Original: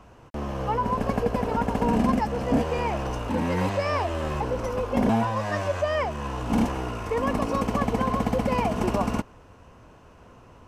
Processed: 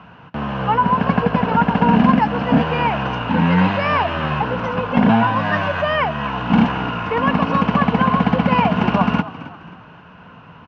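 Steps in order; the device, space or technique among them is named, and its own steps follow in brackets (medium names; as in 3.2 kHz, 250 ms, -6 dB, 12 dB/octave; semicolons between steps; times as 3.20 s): frequency-shifting delay pedal into a guitar cabinet (frequency-shifting echo 267 ms, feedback 39%, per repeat +52 Hz, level -15.5 dB; cabinet simulation 110–3900 Hz, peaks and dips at 170 Hz +10 dB, 360 Hz -9 dB, 550 Hz -5 dB, 940 Hz +3 dB, 1.5 kHz +8 dB, 2.8 kHz +6 dB); trim +7.5 dB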